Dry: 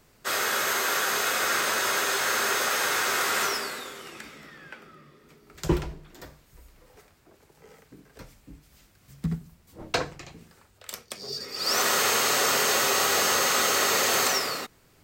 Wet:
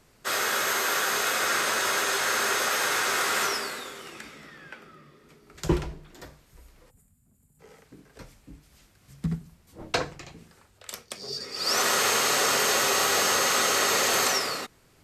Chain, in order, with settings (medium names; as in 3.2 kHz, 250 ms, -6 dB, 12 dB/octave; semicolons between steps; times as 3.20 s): time-frequency box 6.90–7.60 s, 260–6800 Hz -22 dB; MP2 128 kbps 48 kHz